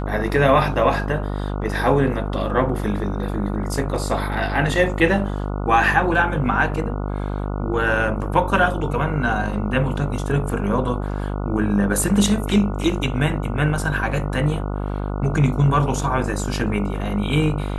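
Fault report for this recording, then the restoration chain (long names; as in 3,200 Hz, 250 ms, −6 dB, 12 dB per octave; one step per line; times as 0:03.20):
mains buzz 50 Hz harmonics 29 −25 dBFS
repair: hum removal 50 Hz, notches 29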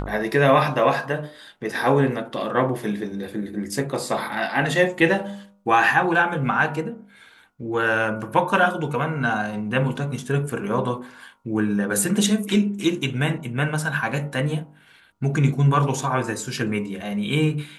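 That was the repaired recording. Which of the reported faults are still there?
none of them is left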